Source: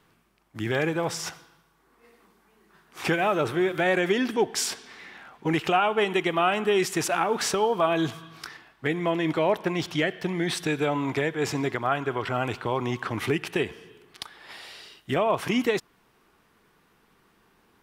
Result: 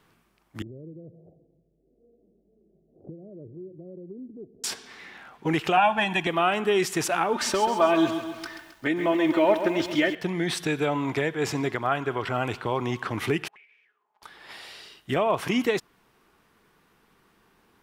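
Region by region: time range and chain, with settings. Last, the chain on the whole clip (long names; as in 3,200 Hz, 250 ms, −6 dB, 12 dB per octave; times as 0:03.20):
0:00.62–0:04.64: Butterworth low-pass 640 Hz 72 dB per octave + treble cut that deepens with the level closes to 310 Hz, closed at −25.5 dBFS + downward compressor 1.5 to 1, threshold −60 dBFS
0:05.77–0:06.27: high-shelf EQ 9,100 Hz −6 dB + comb filter 1.2 ms, depth 96%
0:07.33–0:10.15: high-shelf EQ 7,300 Hz −6 dB + comb filter 3.3 ms, depth 63% + feedback echo at a low word length 133 ms, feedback 55%, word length 8 bits, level −9.5 dB
0:13.48–0:14.23: lower of the sound and its delayed copy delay 4.8 ms + envelope filter 670–2,300 Hz, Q 12, up, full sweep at −32 dBFS + downward compressor 16 to 1, threshold −50 dBFS
whole clip: no processing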